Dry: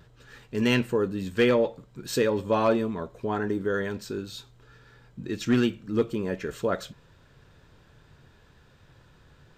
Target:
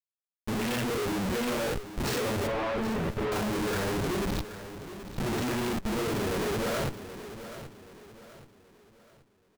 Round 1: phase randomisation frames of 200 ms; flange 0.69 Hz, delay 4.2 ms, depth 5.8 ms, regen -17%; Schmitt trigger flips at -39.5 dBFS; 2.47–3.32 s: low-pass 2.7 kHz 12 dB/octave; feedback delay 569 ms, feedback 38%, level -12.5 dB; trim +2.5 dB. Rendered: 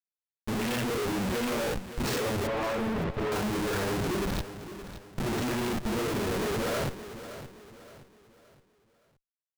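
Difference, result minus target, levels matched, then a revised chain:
echo 208 ms early
phase randomisation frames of 200 ms; flange 0.69 Hz, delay 4.2 ms, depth 5.8 ms, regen -17%; Schmitt trigger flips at -39.5 dBFS; 2.47–3.32 s: low-pass 2.7 kHz 12 dB/octave; feedback delay 777 ms, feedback 38%, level -12.5 dB; trim +2.5 dB

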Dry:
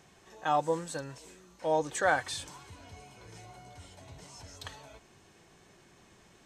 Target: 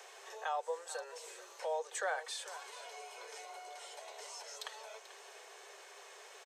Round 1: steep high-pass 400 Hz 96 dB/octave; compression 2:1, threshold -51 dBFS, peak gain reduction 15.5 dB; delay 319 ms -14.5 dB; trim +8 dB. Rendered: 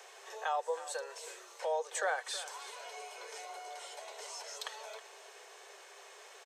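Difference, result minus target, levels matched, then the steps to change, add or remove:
echo 119 ms early; compression: peak gain reduction -3 dB
change: compression 2:1, threshold -57 dBFS, peak gain reduction 18.5 dB; change: delay 438 ms -14.5 dB

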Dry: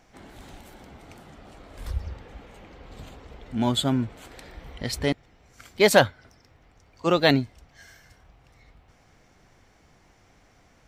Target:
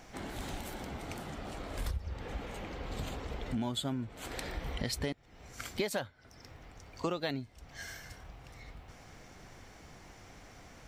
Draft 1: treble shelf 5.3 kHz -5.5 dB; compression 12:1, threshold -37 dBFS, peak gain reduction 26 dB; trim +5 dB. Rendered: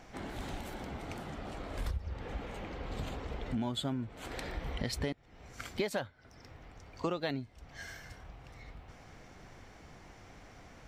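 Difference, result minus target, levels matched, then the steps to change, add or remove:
8 kHz band -4.0 dB
change: treble shelf 5.3 kHz +2.5 dB

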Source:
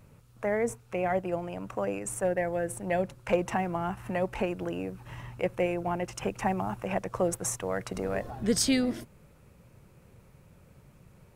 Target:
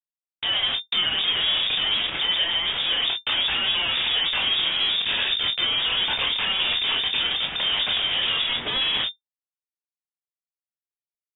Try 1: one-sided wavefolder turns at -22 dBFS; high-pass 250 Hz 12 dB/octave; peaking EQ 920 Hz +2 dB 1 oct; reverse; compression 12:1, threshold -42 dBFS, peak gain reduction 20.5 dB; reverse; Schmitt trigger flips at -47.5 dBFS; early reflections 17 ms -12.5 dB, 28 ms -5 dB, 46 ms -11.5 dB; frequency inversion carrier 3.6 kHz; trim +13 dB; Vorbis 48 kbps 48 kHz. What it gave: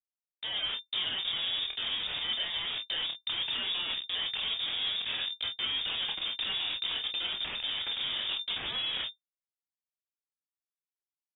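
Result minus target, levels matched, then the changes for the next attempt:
compression: peak gain reduction +10.5 dB
change: compression 12:1, threshold -30.5 dBFS, peak gain reduction 10 dB

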